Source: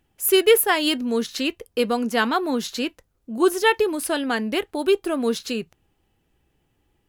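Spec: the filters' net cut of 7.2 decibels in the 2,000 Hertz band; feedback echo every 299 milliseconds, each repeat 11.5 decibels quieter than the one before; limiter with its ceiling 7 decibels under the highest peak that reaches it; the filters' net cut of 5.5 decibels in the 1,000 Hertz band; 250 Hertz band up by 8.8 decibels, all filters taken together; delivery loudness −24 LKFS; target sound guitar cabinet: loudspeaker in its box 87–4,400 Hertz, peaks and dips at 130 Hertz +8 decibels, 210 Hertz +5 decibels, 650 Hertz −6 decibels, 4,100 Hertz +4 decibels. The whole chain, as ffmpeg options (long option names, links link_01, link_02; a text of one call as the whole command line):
ffmpeg -i in.wav -af "equalizer=frequency=250:width_type=o:gain=8.5,equalizer=frequency=1000:width_type=o:gain=-4,equalizer=frequency=2000:width_type=o:gain=-8.5,alimiter=limit=-11.5dB:level=0:latency=1,highpass=87,equalizer=frequency=130:width_type=q:width=4:gain=8,equalizer=frequency=210:width_type=q:width=4:gain=5,equalizer=frequency=650:width_type=q:width=4:gain=-6,equalizer=frequency=4100:width_type=q:width=4:gain=4,lowpass=frequency=4400:width=0.5412,lowpass=frequency=4400:width=1.3066,aecho=1:1:299|598|897:0.266|0.0718|0.0194,volume=-4.5dB" out.wav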